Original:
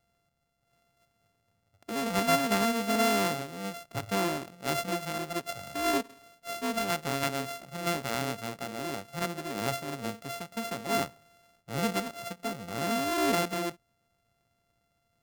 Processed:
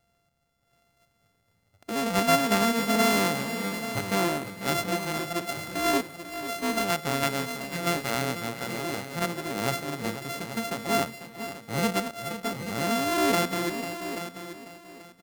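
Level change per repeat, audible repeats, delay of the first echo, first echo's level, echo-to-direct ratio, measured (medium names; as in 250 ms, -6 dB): no regular repeats, 4, 494 ms, -11.5 dB, -8.0 dB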